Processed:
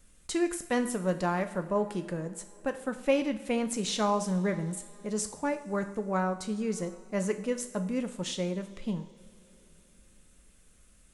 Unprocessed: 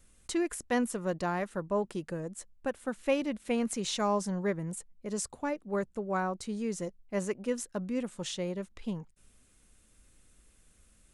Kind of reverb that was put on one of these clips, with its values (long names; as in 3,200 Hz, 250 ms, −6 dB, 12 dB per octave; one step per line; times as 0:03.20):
coupled-rooms reverb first 0.6 s, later 4.2 s, from −19 dB, DRR 7.5 dB
level +1.5 dB